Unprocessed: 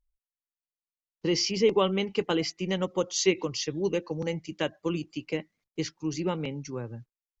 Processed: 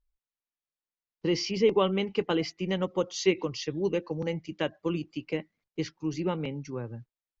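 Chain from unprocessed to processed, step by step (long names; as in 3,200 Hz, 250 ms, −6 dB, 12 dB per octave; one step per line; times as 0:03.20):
high-frequency loss of the air 120 metres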